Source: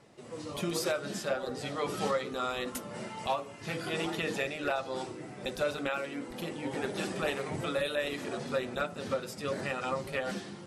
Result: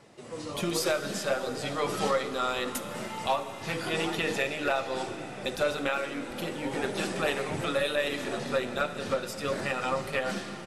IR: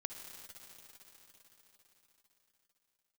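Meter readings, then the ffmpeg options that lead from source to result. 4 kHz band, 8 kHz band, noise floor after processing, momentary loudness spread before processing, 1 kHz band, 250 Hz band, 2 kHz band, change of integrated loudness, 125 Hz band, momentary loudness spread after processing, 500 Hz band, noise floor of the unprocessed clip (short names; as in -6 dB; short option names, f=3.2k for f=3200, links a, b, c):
+4.5 dB, +5.0 dB, -40 dBFS, 7 LU, +4.5 dB, +2.5 dB, +4.5 dB, +4.0 dB, +2.0 dB, 7 LU, +3.5 dB, -47 dBFS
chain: -filter_complex "[0:a]aeval=exprs='0.0944*(cos(1*acos(clip(val(0)/0.0944,-1,1)))-cos(1*PI/2))+0.00211*(cos(6*acos(clip(val(0)/0.0944,-1,1)))-cos(6*PI/2))':c=same,asplit=2[a][b];[1:a]atrim=start_sample=2205,lowshelf=f=380:g=-8[c];[b][c]afir=irnorm=-1:irlink=0,volume=0dB[d];[a][d]amix=inputs=2:normalize=0,aresample=32000,aresample=44100"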